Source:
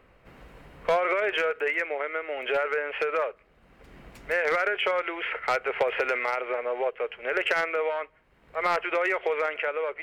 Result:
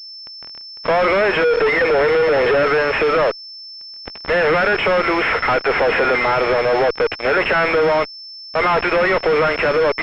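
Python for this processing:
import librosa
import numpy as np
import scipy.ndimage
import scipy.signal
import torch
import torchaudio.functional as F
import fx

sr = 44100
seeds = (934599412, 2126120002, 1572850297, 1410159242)

y = fx.small_body(x, sr, hz=(470.0, 1800.0), ring_ms=55, db=17, at=(1.44, 2.63))
y = fx.fuzz(y, sr, gain_db=45.0, gate_db=-40.0)
y = fx.pwm(y, sr, carrier_hz=5300.0)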